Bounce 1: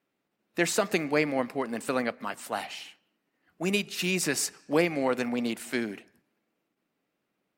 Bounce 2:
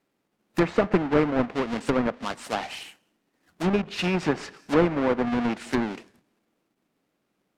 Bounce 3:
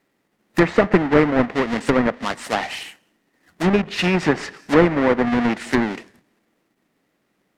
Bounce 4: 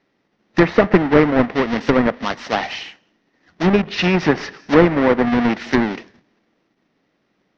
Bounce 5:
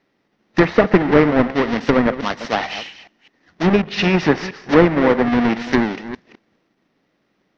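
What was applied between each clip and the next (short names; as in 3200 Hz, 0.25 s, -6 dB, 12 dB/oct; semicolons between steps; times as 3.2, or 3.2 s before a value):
half-waves squared off; treble ducked by the level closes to 1700 Hz, closed at -19.5 dBFS
bell 1900 Hz +7 dB 0.25 oct; gain +6 dB
Chebyshev low-pass 5900 Hz, order 5; gain +2.5 dB
reverse delay 0.205 s, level -13.5 dB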